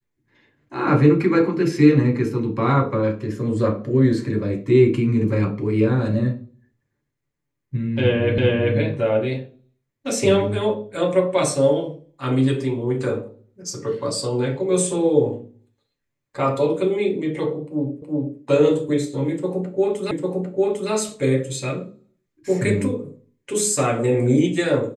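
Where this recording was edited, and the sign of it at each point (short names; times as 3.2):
8.38 repeat of the last 0.39 s
18.02 repeat of the last 0.37 s
20.11 repeat of the last 0.8 s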